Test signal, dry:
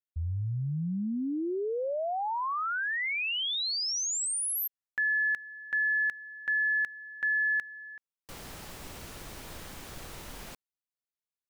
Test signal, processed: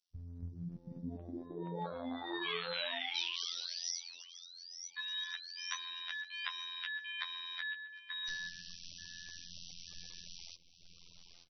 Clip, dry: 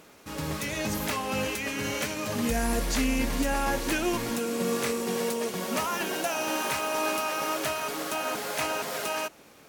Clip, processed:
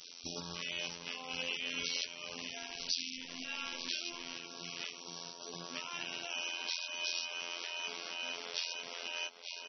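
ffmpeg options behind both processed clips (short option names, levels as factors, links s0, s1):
-filter_complex "[0:a]afwtdn=0.0158,acrossover=split=1700[s0][s1];[s0]alimiter=level_in=1.5:limit=0.0631:level=0:latency=1:release=58,volume=0.668[s2];[s2][s1]amix=inputs=2:normalize=0,bandreject=f=58.32:t=h:w=4,bandreject=f=116.64:t=h:w=4,bandreject=f=174.96:t=h:w=4,bandreject=f=233.28:t=h:w=4,bandreject=f=291.6:t=h:w=4,bandreject=f=349.92:t=h:w=4,bandreject=f=408.24:t=h:w=4,bandreject=f=466.56:t=h:w=4,bandreject=f=524.88:t=h:w=4,aexciter=amount=6.9:drive=4.9:freq=2700,acontrast=75,asplit=2[s3][s4];[s4]adelay=882,lowpass=f=3700:p=1,volume=0.168,asplit=2[s5][s6];[s6]adelay=882,lowpass=f=3700:p=1,volume=0.29,asplit=2[s7][s8];[s8]adelay=882,lowpass=f=3700:p=1,volume=0.29[s9];[s3][s5][s7][s9]amix=inputs=4:normalize=0,afftfilt=real='hypot(re,im)*cos(PI*b)':imag='0':win_size=2048:overlap=0.75,highshelf=f=4000:g=11,acompressor=threshold=0.1:ratio=12:attack=0.41:release=707:knee=1:detection=rms,equalizer=f=85:t=o:w=1.2:g=-11,afftfilt=real='re*lt(hypot(re,im),0.141)':imag='im*lt(hypot(re,im),0.141)':win_size=1024:overlap=0.75,volume=1.26" -ar 24000 -c:a libmp3lame -b:a 24k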